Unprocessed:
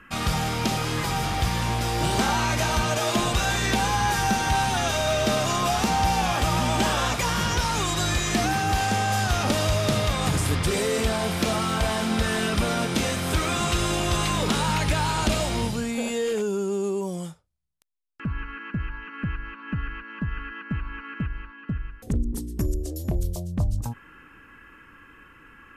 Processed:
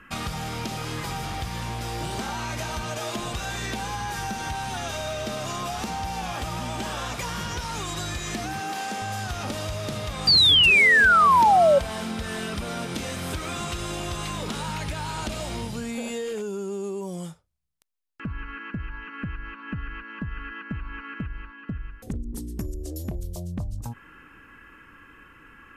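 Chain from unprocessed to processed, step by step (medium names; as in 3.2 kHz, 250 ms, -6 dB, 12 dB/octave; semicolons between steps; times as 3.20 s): 8.60–9.02 s: high-pass 190 Hz 24 dB/octave; compression, threshold -28 dBFS, peak gain reduction 10 dB; 10.27–11.79 s: painted sound fall 540–4800 Hz -16 dBFS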